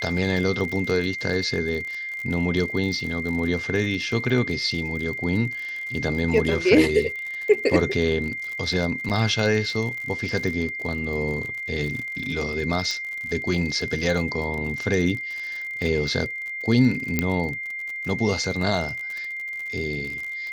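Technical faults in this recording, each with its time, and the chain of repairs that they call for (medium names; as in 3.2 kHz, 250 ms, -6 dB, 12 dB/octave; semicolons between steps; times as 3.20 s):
crackle 52 per s -30 dBFS
whine 2.1 kHz -29 dBFS
9.09–9.10 s: dropout 8 ms
12.91 s: pop -15 dBFS
17.19 s: pop -7 dBFS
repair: de-click; band-stop 2.1 kHz, Q 30; interpolate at 9.09 s, 8 ms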